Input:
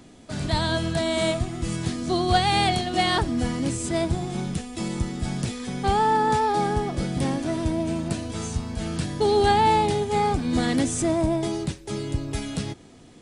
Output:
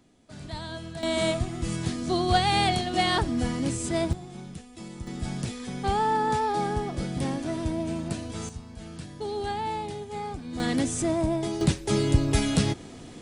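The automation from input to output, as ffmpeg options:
-af "asetnsamples=n=441:p=0,asendcmd='1.03 volume volume -2dB;4.13 volume volume -12dB;5.07 volume volume -4dB;8.49 volume volume -12dB;10.6 volume volume -3dB;11.61 volume volume 6dB',volume=0.237"

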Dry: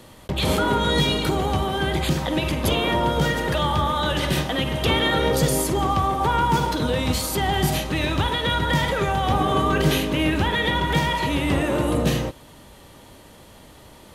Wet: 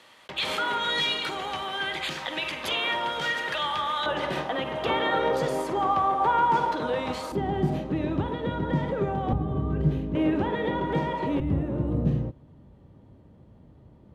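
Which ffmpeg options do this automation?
-af "asetnsamples=n=441:p=0,asendcmd='4.06 bandpass f 860;7.32 bandpass f 270;9.33 bandpass f 100;10.15 bandpass f 390;11.4 bandpass f 120',bandpass=f=2200:t=q:w=0.82:csg=0"

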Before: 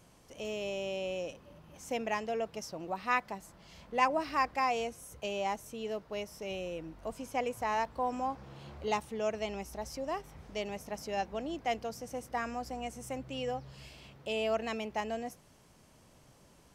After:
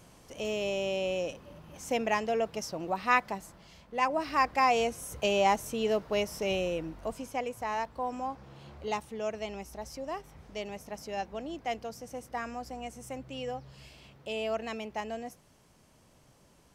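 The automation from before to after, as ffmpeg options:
-af "volume=7.5,afade=t=out:st=3.37:d=0.49:silence=0.375837,afade=t=in:st=3.86:d=1.37:silence=0.237137,afade=t=out:st=6.46:d=0.96:silence=0.316228"

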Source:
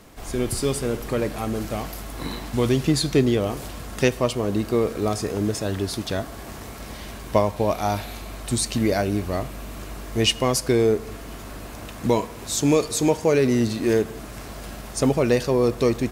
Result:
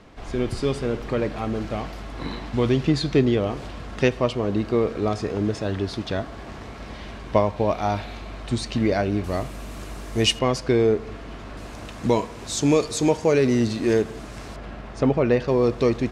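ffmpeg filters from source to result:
-af "asetnsamples=n=441:p=0,asendcmd='9.24 lowpass f 9900;10.39 lowpass f 3900;11.57 lowpass f 7100;14.56 lowpass f 2600;15.48 lowpass f 4700',lowpass=4000"

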